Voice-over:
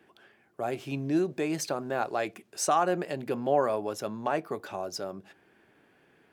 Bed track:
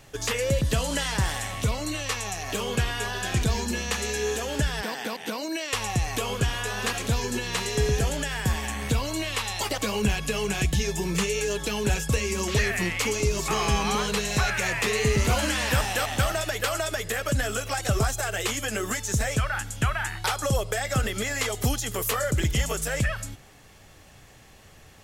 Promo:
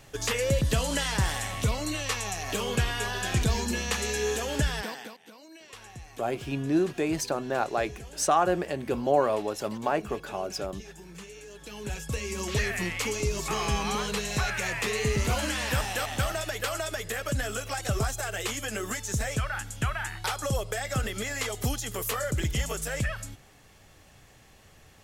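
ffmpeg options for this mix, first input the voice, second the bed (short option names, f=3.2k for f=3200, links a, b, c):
-filter_complex "[0:a]adelay=5600,volume=2dB[a];[1:a]volume=14dB,afade=t=out:st=4.71:d=0.47:silence=0.125893,afade=t=in:st=11.52:d=1.05:silence=0.177828[b];[a][b]amix=inputs=2:normalize=0"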